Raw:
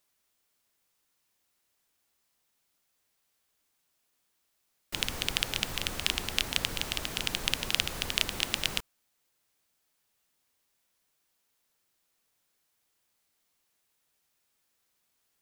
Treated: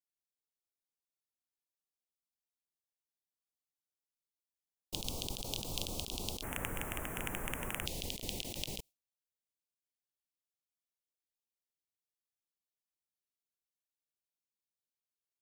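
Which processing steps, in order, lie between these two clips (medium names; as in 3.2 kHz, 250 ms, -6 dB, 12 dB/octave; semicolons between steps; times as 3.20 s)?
Butterworth band-stop 1.7 kHz, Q 0.68, from 6.42 s 4.4 kHz, from 7.85 s 1.4 kHz; gate with hold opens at -35 dBFS; compressor with a negative ratio -35 dBFS, ratio -0.5; trim -3 dB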